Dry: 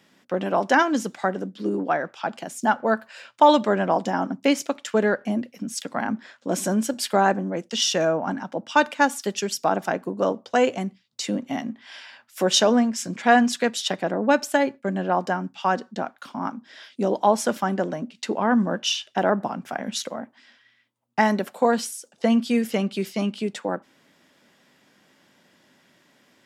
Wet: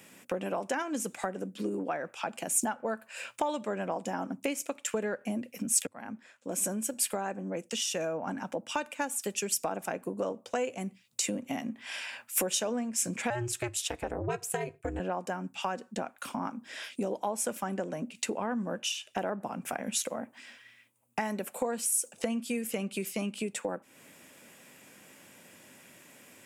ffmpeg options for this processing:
ffmpeg -i in.wav -filter_complex "[0:a]asettb=1/sr,asplit=3[link_01][link_02][link_03];[link_01]atrim=end=13.304[link_04];[link_02]atrim=start=13.3:end=15,asetpts=PTS-STARTPTS,afade=type=in:duration=0.004:curve=qsin,afade=type=out:start_time=1.696:duration=0.004:curve=qsin,aeval=exprs='val(0)*sin(2*PI*120*n/s)':channel_layout=same[link_05];[link_03]atrim=start=14.996[link_06];[link_04][link_05]acrossfade=duration=0.004:curve1=hsin:curve2=qsin[link_07];[link_07][link_06]acrossfade=duration=0.004:curve1=qsin:curve2=hsin,asplit=2[link_08][link_09];[link_08]atrim=end=5.87,asetpts=PTS-STARTPTS,afade=type=out:start_time=5.866:duration=0.004:curve=hsin:silence=0.0707946[link_10];[link_09]atrim=start=5.87,asetpts=PTS-STARTPTS,afade=type=in:duration=3.16:silence=0.0707946[link_11];[link_10][link_11]concat=n=2:v=0:a=1,equalizer=frequency=100:width_type=o:width=0.33:gain=6,equalizer=frequency=500:width_type=o:width=0.33:gain=4,equalizer=frequency=2500:width_type=o:width=0.33:gain=9,acompressor=threshold=-35dB:ratio=4,highshelf=frequency=6400:width_type=q:width=1.5:gain=11,volume=2.5dB" out.wav

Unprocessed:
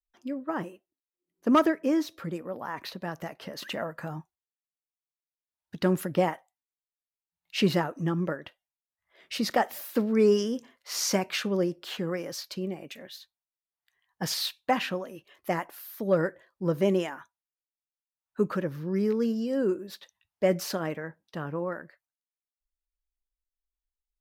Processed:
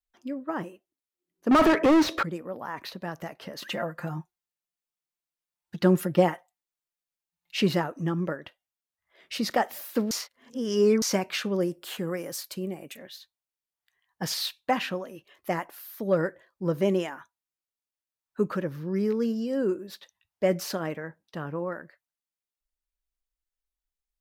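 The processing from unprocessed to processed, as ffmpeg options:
ffmpeg -i in.wav -filter_complex "[0:a]asettb=1/sr,asplit=3[link_01][link_02][link_03];[link_01]atrim=end=1.514[link_04];[link_02]atrim=start=1.51:end=2.23,asetpts=PTS-STARTPTS,afade=type=in:duration=0.004:curve=qsin,afade=type=out:start_time=0.716:duration=0.004:curve=qsin,asplit=2[link_05][link_06];[link_06]highpass=frequency=720:poles=1,volume=35dB,asoftclip=type=tanh:threshold=-11.5dB[link_07];[link_05][link_07]amix=inputs=2:normalize=0,lowpass=frequency=1300:poles=1,volume=-6dB[link_08];[link_03]atrim=start=2.226[link_09];[link_04][link_08]acrossfade=duration=0.004:curve1=hsin:curve2=qsin[link_10];[link_10][link_09]acrossfade=duration=0.004:curve1=qsin:curve2=hsin,asettb=1/sr,asplit=3[link_11][link_12][link_13];[link_11]atrim=end=3.684[link_14];[link_12]atrim=start=3.68:end=7.57,asetpts=PTS-STARTPTS,afade=type=in:duration=0.004:curve=qsin,afade=type=out:start_time=3.886:duration=0.004:curve=qsin,aecho=1:1:5.7:0.7,atrim=end_sample=171549[link_15];[link_13]atrim=start=7.566[link_16];[link_14][link_15]acrossfade=duration=0.004:curve1=hsin:curve2=qsin[link_17];[link_17][link_16]acrossfade=duration=0.004:curve1=qsin:curve2=hsin,asettb=1/sr,asplit=3[link_18][link_19][link_20];[link_18]atrim=end=11.604[link_21];[link_19]atrim=start=11.6:end=12.97,asetpts=PTS-STARTPTS,afade=type=in:duration=0.004:curve=qsin,afade=type=out:start_time=1.366:duration=0.004:curve=qsin,highshelf=frequency=6800:width_type=q:width=1.5:gain=7.5[link_22];[link_20]atrim=start=12.966[link_23];[link_21][link_22]acrossfade=duration=0.004:curve1=hsin:curve2=qsin[link_24];[link_24][link_23]acrossfade=duration=0.004:curve1=qsin:curve2=hsin,asplit=3[link_25][link_26][link_27];[link_25]atrim=end=10.112[link_28];[link_26]atrim=start=10.108:end=11.022,asetpts=PTS-STARTPTS,areverse[link_29];[link_27]atrim=start=11.018[link_30];[link_28][link_29]acrossfade=duration=0.004:curve1=hsin:curve2=hsin[link_31];[link_31][link_30]acrossfade=duration=0.004:curve1=hsin:curve2=hsin" out.wav

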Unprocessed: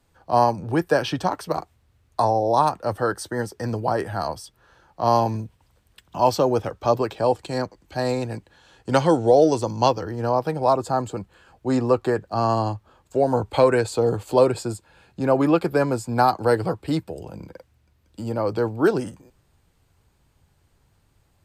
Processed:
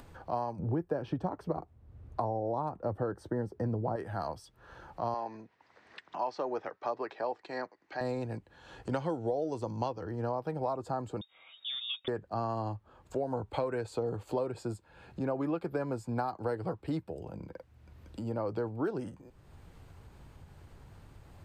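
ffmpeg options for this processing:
ffmpeg -i in.wav -filter_complex "[0:a]asettb=1/sr,asplit=3[link_01][link_02][link_03];[link_01]atrim=end=0.594[link_04];[link_02]atrim=start=0.59:end=3.96,asetpts=PTS-STARTPTS,afade=type=in:duration=0.004:curve=qsin,afade=type=out:start_time=3.366:duration=0.004:curve=qsin,tiltshelf=frequency=1100:gain=8[link_05];[link_03]atrim=start=3.956[link_06];[link_04][link_05]acrossfade=duration=0.004:curve1=hsin:curve2=qsin[link_07];[link_07][link_06]acrossfade=duration=0.004:curve1=qsin:curve2=hsin,asettb=1/sr,asplit=3[link_08][link_09][link_10];[link_08]atrim=end=5.144[link_11];[link_09]atrim=start=5.14:end=8.01,asetpts=PTS-STARTPTS,afade=type=in:duration=0.004:curve=qsin,afade=type=out:start_time=2.866:duration=0.004:curve=qsin,highpass=400,equalizer=frequency=520:width_type=q:width=4:gain=-4,equalizer=frequency=1900:width_type=q:width=4:gain=8,equalizer=frequency=3200:width_type=q:width=4:gain=-5,lowpass=frequency=5800:width=0.5412,lowpass=frequency=5800:width=1.3066[link_12];[link_10]atrim=start=8.006[link_13];[link_11][link_12]acrossfade=duration=0.004:curve1=hsin:curve2=qsin[link_14];[link_14][link_13]acrossfade=duration=0.004:curve1=qsin:curve2=hsin,asettb=1/sr,asplit=3[link_15][link_16][link_17];[link_15]atrim=end=11.214[link_18];[link_16]atrim=start=11.21:end=12.08,asetpts=PTS-STARTPTS,afade=type=in:duration=0.004:curve=qsin,afade=type=out:start_time=0.866:duration=0.004:curve=qsin,lowpass=frequency=3200:width_type=q:width=0.5098,lowpass=frequency=3200:width_type=q:width=0.6013,lowpass=frequency=3200:width_type=q:width=0.9,lowpass=frequency=3200:width_type=q:width=2.563,afreqshift=-3800[link_19];[link_17]atrim=start=12.076[link_20];[link_18][link_19]acrossfade=duration=0.004:curve1=hsin:curve2=qsin[link_21];[link_21][link_20]acrossfade=duration=0.004:curve1=qsin:curve2=hsin,acompressor=threshold=-22dB:ratio=6,highshelf=frequency=3200:gain=-11,acompressor=mode=upward:threshold=-30dB:ratio=2.5,volume=-7dB" out.wav

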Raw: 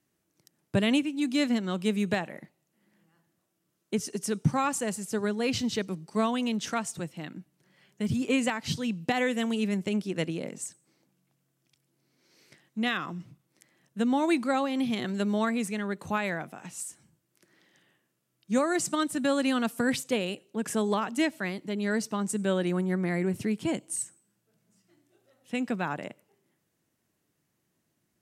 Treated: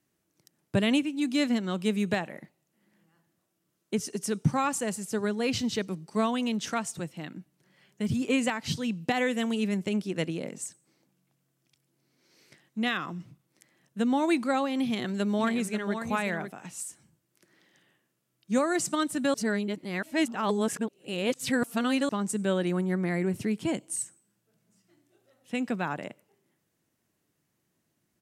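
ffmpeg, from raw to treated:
ffmpeg -i in.wav -filter_complex "[0:a]asplit=3[link_01][link_02][link_03];[link_01]afade=type=out:start_time=15.38:duration=0.02[link_04];[link_02]aecho=1:1:538:0.398,afade=type=in:start_time=15.38:duration=0.02,afade=type=out:start_time=16.5:duration=0.02[link_05];[link_03]afade=type=in:start_time=16.5:duration=0.02[link_06];[link_04][link_05][link_06]amix=inputs=3:normalize=0,asplit=3[link_07][link_08][link_09];[link_07]atrim=end=19.342[link_10];[link_08]atrim=start=19.338:end=22.092,asetpts=PTS-STARTPTS,areverse[link_11];[link_09]atrim=start=22.088[link_12];[link_10][link_11]acrossfade=duration=0.004:curve1=hsin:curve2=hsin[link_13];[link_13][link_12]acrossfade=duration=0.004:curve1=hsin:curve2=hsin" out.wav

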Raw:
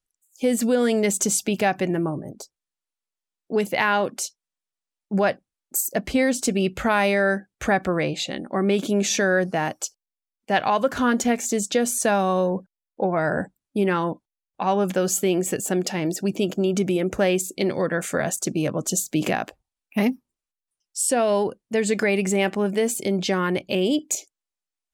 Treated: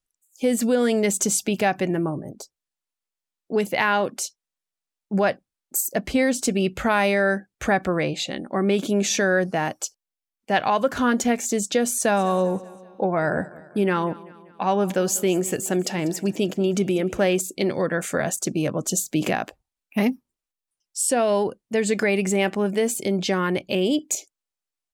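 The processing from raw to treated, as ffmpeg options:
ffmpeg -i in.wav -filter_complex "[0:a]asplit=3[link_01][link_02][link_03];[link_01]afade=type=out:start_time=12.16:duration=0.02[link_04];[link_02]aecho=1:1:194|388|582|776:0.1|0.052|0.027|0.0141,afade=type=in:start_time=12.16:duration=0.02,afade=type=out:start_time=17.39:duration=0.02[link_05];[link_03]afade=type=in:start_time=17.39:duration=0.02[link_06];[link_04][link_05][link_06]amix=inputs=3:normalize=0" out.wav

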